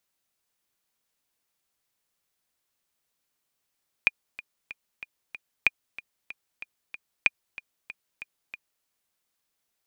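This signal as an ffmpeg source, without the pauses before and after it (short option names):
-f lavfi -i "aevalsrc='pow(10,(-5.5-19*gte(mod(t,5*60/188),60/188))/20)*sin(2*PI*2430*mod(t,60/188))*exp(-6.91*mod(t,60/188)/0.03)':d=4.78:s=44100"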